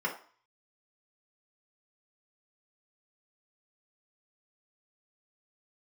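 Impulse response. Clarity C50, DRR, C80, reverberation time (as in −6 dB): 9.5 dB, −3.5 dB, 14.0 dB, 0.45 s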